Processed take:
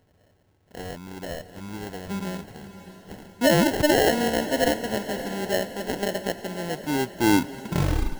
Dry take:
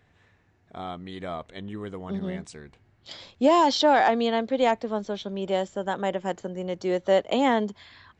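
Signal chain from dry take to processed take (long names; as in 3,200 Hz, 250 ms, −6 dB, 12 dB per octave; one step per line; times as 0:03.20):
turntable brake at the end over 1.63 s
sample-rate reduction 1,200 Hz, jitter 0%
feedback delay with all-pass diffusion 601 ms, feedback 55%, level −12.5 dB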